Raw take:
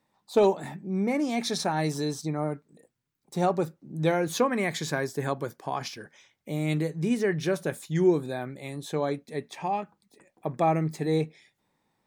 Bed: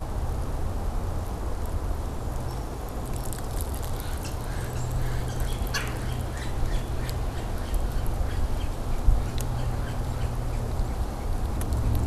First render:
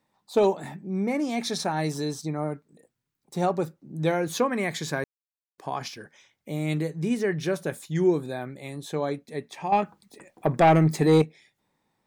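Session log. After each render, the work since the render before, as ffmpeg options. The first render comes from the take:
-filter_complex "[0:a]asettb=1/sr,asplit=3[s0][s1][s2];[s0]atrim=end=9.724[s3];[s1]atrim=start=9.72:end=11.22,asetpts=PTS-STARTPTS,afade=t=in:d=0.004:c=qsin,afade=t=out:st=1.496:d=0.004:c=qsin,aeval=exprs='0.251*sin(PI/2*1.78*val(0)/0.251)':c=same[s4];[s2]atrim=start=11.216[s5];[s3][s4]acrossfade=d=0.004:c1=hsin:c2=qsin[s6];[s6][s5]acrossfade=d=0.004:c1=qsin:c2=hsin,asplit=3[s7][s8][s9];[s7]atrim=end=5.04,asetpts=PTS-STARTPTS,afade=t=out:st=5.036:d=0.004:c=hsin[s10];[s8]atrim=start=5.04:end=5.58,asetpts=PTS-STARTPTS,volume=0[s11];[s9]atrim=start=5.58,asetpts=PTS-STARTPTS,afade=t=in:d=0.004:c=hsin[s12];[s10][s11][s12]concat=n=3:v=0:a=1"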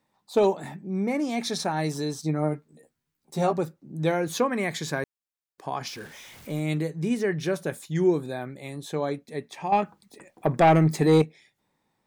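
-filter_complex "[0:a]asettb=1/sr,asplit=3[s0][s1][s2];[s0]atrim=end=2.224[s3];[s1]atrim=start=2.22:end=3.58,asetpts=PTS-STARTPTS,afade=t=in:d=0.004:c=qsin,afade=t=out:st=1.356:d=0.004:c=qsin,asplit=2[s4][s5];[s5]adelay=13,volume=0.708[s6];[s4][s6]amix=inputs=2:normalize=0,atrim=end_sample=59976[s7];[s2]atrim=start=3.576[s8];[s3][s7]acrossfade=d=0.004:c1=hsin:c2=qsin[s9];[s9][s8]acrossfade=d=0.004:c1=qsin:c2=hsin,asettb=1/sr,asplit=3[s10][s11][s12];[s10]atrim=end=5.874[s13];[s11]atrim=start=5.87:end=6.6,asetpts=PTS-STARTPTS,afade=t=in:d=0.004:c=qsin,afade=t=out:st=0.726:d=0.004:c=qsin,aeval=exprs='val(0)+0.5*0.00794*sgn(val(0))':c=same[s14];[s12]atrim=start=6.596[s15];[s13][s14]acrossfade=d=0.004:c1=hsin:c2=qsin[s16];[s16][s15]acrossfade=d=0.004:c1=qsin:c2=hsin"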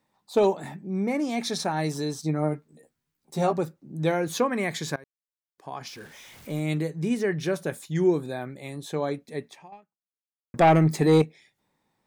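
-filter_complex "[0:a]asplit=3[s0][s1][s2];[s0]atrim=end=4.96,asetpts=PTS-STARTPTS,afade=t=out:st=4.956:d=0.004:c=hsin:silence=0.0841395[s3];[s1]atrim=start=4.96:end=10.54,asetpts=PTS-STARTPTS,afade=t=in:d=1.61:silence=0.0841395,afade=t=out:st=4.52:d=1.06:c=exp[s4];[s2]atrim=start=10.54,asetpts=PTS-STARTPTS,afade=t=in:d=0.004:c=hsin[s5];[s3][s4][s5]concat=n=3:v=0:a=1"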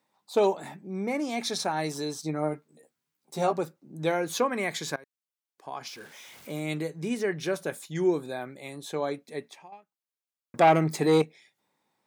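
-af "highpass=f=340:p=1,bandreject=f=1800:w=21"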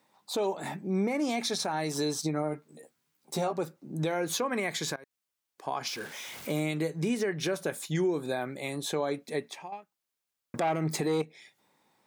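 -filter_complex "[0:a]asplit=2[s0][s1];[s1]acompressor=threshold=0.0251:ratio=6,volume=1.12[s2];[s0][s2]amix=inputs=2:normalize=0,alimiter=limit=0.0944:level=0:latency=1:release=199"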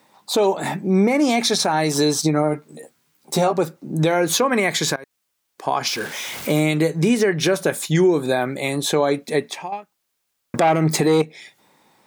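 -af "volume=3.98"

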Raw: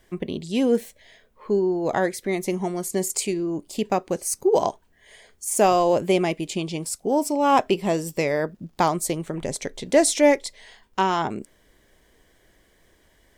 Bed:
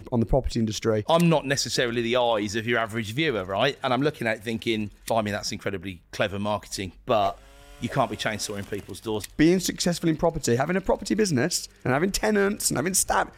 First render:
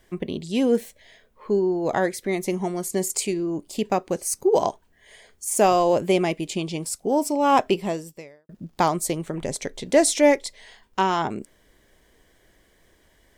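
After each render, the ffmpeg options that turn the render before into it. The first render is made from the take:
-filter_complex "[0:a]asplit=2[s0][s1];[s0]atrim=end=8.49,asetpts=PTS-STARTPTS,afade=t=out:st=7.76:d=0.73:c=qua[s2];[s1]atrim=start=8.49,asetpts=PTS-STARTPTS,afade=t=in:d=0.004:c=hsin[s3];[s2][s3]concat=n=2:v=0:a=1"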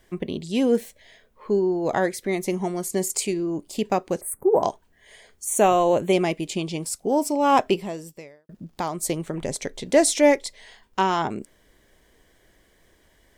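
-filter_complex "[0:a]asettb=1/sr,asplit=3[s0][s1][s2];[s0]atrim=end=4.214[s3];[s1]atrim=start=4.21:end=4.63,asetpts=PTS-STARTPTS,afade=t=in:d=0.004:c=qsin,afade=t=out:st=0.416:d=0.004:c=qsin,asuperstop=centerf=4400:order=8:qfactor=0.6[s4];[s2]atrim=start=4.626[s5];[s3][s4]acrossfade=d=0.004:c1=hsin:c2=qsin[s6];[s6][s5]acrossfade=d=0.004:c1=qsin:c2=hsin,asettb=1/sr,asplit=3[s7][s8][s9];[s7]atrim=end=5.464[s10];[s8]atrim=start=5.46:end=6.13,asetpts=PTS-STARTPTS,afade=t=in:d=0.004:c=qsin,afade=t=out:st=0.666:d=0.004:c=qsin,asuperstop=centerf=5000:order=20:qfactor=4[s11];[s9]atrim=start=6.126[s12];[s10][s11]acrossfade=d=0.004:c1=hsin:c2=qsin[s13];[s13][s12]acrossfade=d=0.004:c1=qsin:c2=hsin,asettb=1/sr,asplit=3[s14][s15][s16];[s14]atrim=end=7.794[s17];[s15]atrim=start=7.79:end=9.03,asetpts=PTS-STARTPTS,afade=t=in:d=0.004:c=qsin,afade=t=out:st=1.236:d=0.004:c=qsin,acompressor=threshold=0.0178:ratio=1.5:attack=3.2:release=140:knee=1:detection=peak[s18];[s16]atrim=start=9.026[s19];[s17][s18]acrossfade=d=0.004:c1=hsin:c2=qsin[s20];[s20][s19]acrossfade=d=0.004:c1=qsin:c2=hsin"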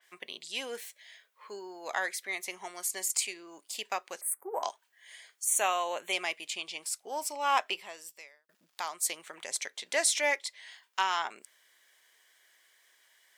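-af "highpass=1400,adynamicequalizer=threshold=0.00501:dfrequency=4000:dqfactor=0.7:tfrequency=4000:tqfactor=0.7:attack=5:release=100:ratio=0.375:range=3.5:mode=cutabove:tftype=highshelf"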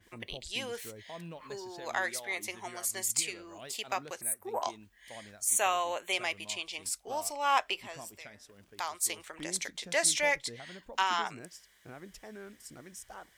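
-filter_complex "[1:a]volume=0.0562[s0];[0:a][s0]amix=inputs=2:normalize=0"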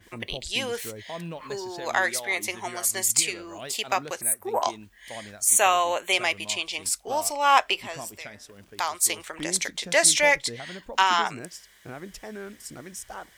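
-af "volume=2.66"

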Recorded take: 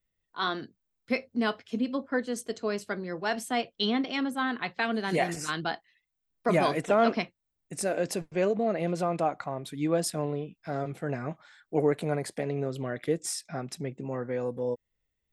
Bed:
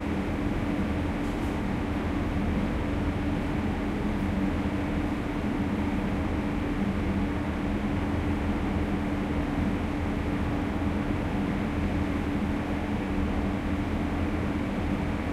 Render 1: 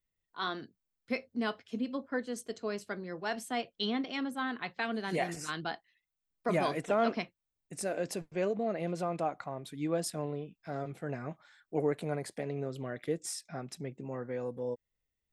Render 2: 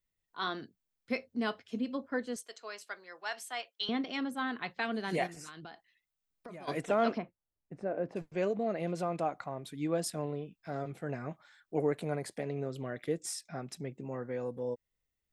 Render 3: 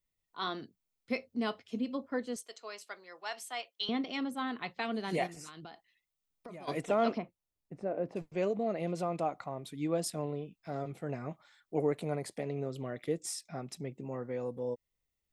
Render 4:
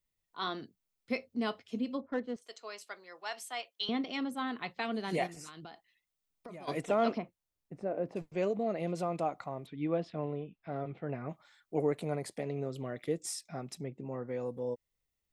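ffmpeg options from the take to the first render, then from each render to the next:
-af "volume=0.531"
-filter_complex "[0:a]asettb=1/sr,asplit=3[s0][s1][s2];[s0]atrim=end=2.364[s3];[s1]atrim=start=2.36:end=3.89,asetpts=PTS-STARTPTS,afade=t=in:d=0.004:c=qsin,afade=t=out:st=1.526:d=0.004:c=qsin,highpass=880[s4];[s2]atrim=start=3.886[s5];[s3][s4]acrossfade=d=0.004:c1=hsin:c2=qsin[s6];[s6][s5]acrossfade=d=0.004:c1=qsin:c2=hsin,asplit=3[s7][s8][s9];[s7]afade=t=out:st=5.26:d=0.02[s10];[s8]acompressor=threshold=0.00708:ratio=12:attack=3.2:release=140:knee=1:detection=peak,afade=t=in:st=5.26:d=0.02,afade=t=out:st=6.67:d=0.02[s11];[s9]afade=t=in:st=6.67:d=0.02[s12];[s10][s11][s12]amix=inputs=3:normalize=0,asplit=3[s13][s14][s15];[s13]afade=t=out:st=7.17:d=0.02[s16];[s14]lowpass=1200,afade=t=in:st=7.17:d=0.02,afade=t=out:st=8.15:d=0.02[s17];[s15]afade=t=in:st=8.15:d=0.02[s18];[s16][s17][s18]amix=inputs=3:normalize=0"
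-af "equalizer=f=1600:w=4.8:g=-7"
-filter_complex "[0:a]asplit=3[s0][s1][s2];[s0]afade=t=out:st=2:d=0.02[s3];[s1]adynamicsmooth=sensitivity=6:basefreq=1800,afade=t=in:st=2:d=0.02,afade=t=out:st=2.41:d=0.02[s4];[s2]afade=t=in:st=2.41:d=0.02[s5];[s3][s4][s5]amix=inputs=3:normalize=0,asplit=3[s6][s7][s8];[s6]afade=t=out:st=9.65:d=0.02[s9];[s7]lowpass=f=3300:w=0.5412,lowpass=f=3300:w=1.3066,afade=t=in:st=9.65:d=0.02,afade=t=out:st=11.28:d=0.02[s10];[s8]afade=t=in:st=11.28:d=0.02[s11];[s9][s10][s11]amix=inputs=3:normalize=0,asettb=1/sr,asplit=3[s12][s13][s14];[s12]atrim=end=13.844[s15];[s13]atrim=start=13.84:end=14.28,asetpts=PTS-STARTPTS,afade=t=in:d=0.004:c=qsin,afade=t=out:st=0.436:d=0.004:c=qsin,lowpass=f=2600:p=1[s16];[s14]atrim=start=14.276[s17];[s15][s16]acrossfade=d=0.004:c1=hsin:c2=qsin[s18];[s18][s17]acrossfade=d=0.004:c1=qsin:c2=hsin"

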